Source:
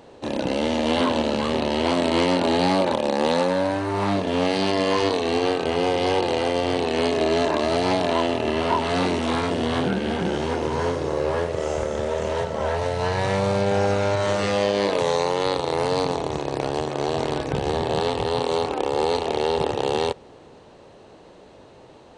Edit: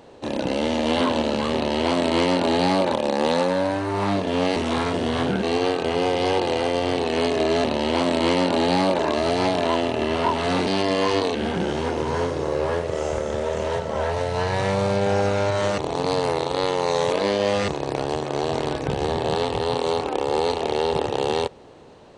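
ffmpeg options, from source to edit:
-filter_complex "[0:a]asplit=9[a][b][c][d][e][f][g][h][i];[a]atrim=end=4.562[j];[b]atrim=start=9.128:end=10.002[k];[c]atrim=start=5.238:end=7.452[l];[d]atrim=start=1.548:end=2.902[m];[e]atrim=start=7.448:end=9.132[n];[f]atrim=start=4.558:end=5.242[o];[g]atrim=start=9.998:end=14.432[p];[h]atrim=start=14.428:end=16.332,asetpts=PTS-STARTPTS,areverse[q];[i]atrim=start=16.328[r];[j][k]acrossfade=d=0.004:c1=hsin:c2=hsin[s];[s][l]acrossfade=d=0.004:c1=hsin:c2=hsin[t];[t][m]acrossfade=d=0.004:c1=hsin:c2=hsin[u];[u][n]acrossfade=d=0.004:c1=hsin:c2=hsin[v];[v][o]acrossfade=d=0.004:c1=hsin:c2=hsin[w];[w][p]acrossfade=d=0.004:c1=hsin:c2=hsin[x];[x][q]acrossfade=d=0.004:c1=hsin:c2=hsin[y];[y][r]acrossfade=d=0.004:c1=hsin:c2=hsin"

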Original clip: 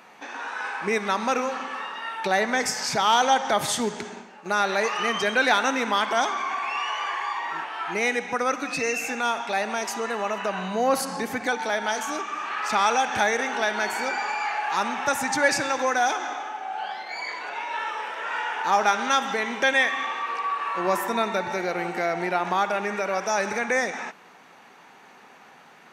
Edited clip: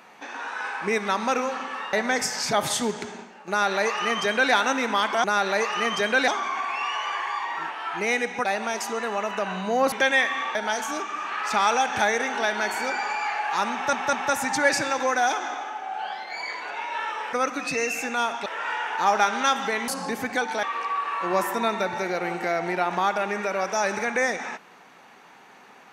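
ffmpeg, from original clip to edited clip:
-filter_complex "[0:a]asplit=14[a][b][c][d][e][f][g][h][i][j][k][l][m][n];[a]atrim=end=1.932[o];[b]atrim=start=2.368:end=2.972[p];[c]atrim=start=3.508:end=6.222[q];[d]atrim=start=4.468:end=5.512[r];[e]atrim=start=6.218:end=8.392[s];[f]atrim=start=9.518:end=10.992[t];[g]atrim=start=19.538:end=20.172[u];[h]atrim=start=11.738:end=15.122[v];[i]atrim=start=14.918:end=15.122[w];[j]atrim=start=14.918:end=18.122[x];[k]atrim=start=8.388:end=9.522[y];[l]atrim=start=18.118:end=19.542[z];[m]atrim=start=10.988:end=11.742[aa];[n]atrim=start=20.168[ab];[o][p]acrossfade=d=0.004:c1=hsin:c2=hsin[ac];[ac][q]acrossfade=d=0.004:c1=hsin:c2=hsin[ad];[ad][r]acrossfade=d=0.004:c1=hsin:c2=hsin[ae];[ae][s]acrossfade=d=0.004:c1=hsin:c2=hsin[af];[af][t]acrossfade=d=0.004:c1=hsin:c2=hsin[ag];[ag][u]acrossfade=d=0.004:c1=hsin:c2=hsin[ah];[ah][v]acrossfade=d=0.004:c1=hsin:c2=hsin[ai];[ai][w]acrossfade=d=0.004:c1=hsin:c2=hsin[aj];[aj][x]acrossfade=d=0.004:c1=hsin:c2=hsin[ak];[ak][y]acrossfade=d=0.004:c1=hsin:c2=hsin[al];[al][z]acrossfade=d=0.004:c1=hsin:c2=hsin[am];[am][aa]acrossfade=d=0.004:c1=hsin:c2=hsin[an];[an][ab]acrossfade=d=0.004:c1=hsin:c2=hsin"

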